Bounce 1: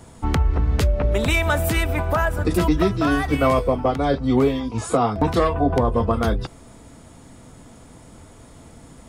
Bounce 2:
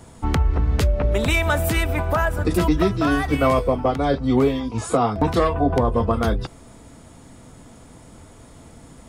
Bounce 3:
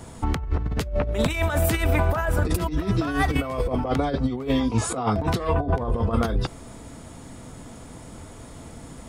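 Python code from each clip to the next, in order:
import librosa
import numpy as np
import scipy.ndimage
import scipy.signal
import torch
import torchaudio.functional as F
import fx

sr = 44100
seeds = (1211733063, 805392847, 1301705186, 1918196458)

y1 = x
y2 = fx.over_compress(y1, sr, threshold_db=-22.0, ratio=-0.5)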